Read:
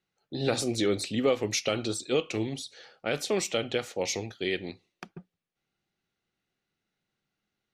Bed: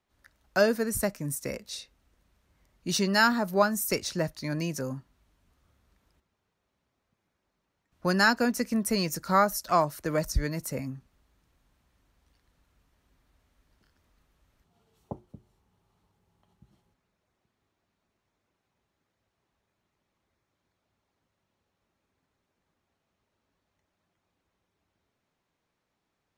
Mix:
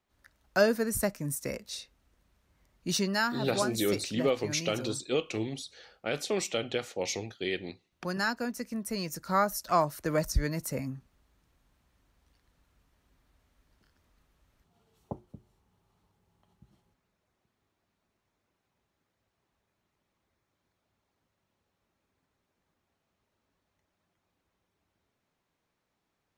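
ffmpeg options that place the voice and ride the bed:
-filter_complex "[0:a]adelay=3000,volume=-2.5dB[a];[1:a]volume=6.5dB,afade=t=out:st=2.91:d=0.36:silence=0.446684,afade=t=in:st=8.84:d=1.23:silence=0.421697[b];[a][b]amix=inputs=2:normalize=0"

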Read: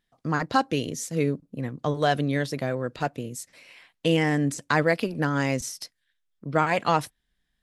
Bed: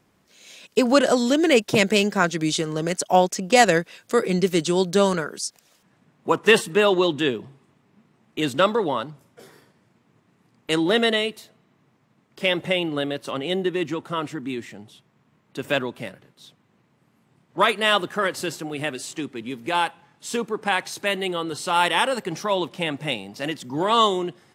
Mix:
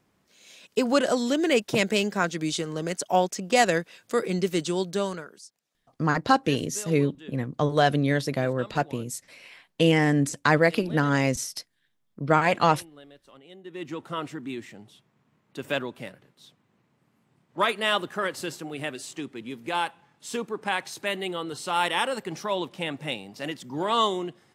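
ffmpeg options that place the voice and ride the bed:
-filter_complex "[0:a]adelay=5750,volume=2dB[a];[1:a]volume=13.5dB,afade=t=out:st=4.63:d=0.91:silence=0.11885,afade=t=in:st=13.63:d=0.4:silence=0.11885[b];[a][b]amix=inputs=2:normalize=0"

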